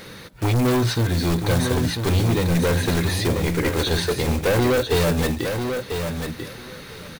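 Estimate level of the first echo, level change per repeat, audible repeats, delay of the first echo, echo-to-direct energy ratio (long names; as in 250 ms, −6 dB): −6.5 dB, −16.5 dB, 2, 993 ms, −6.5 dB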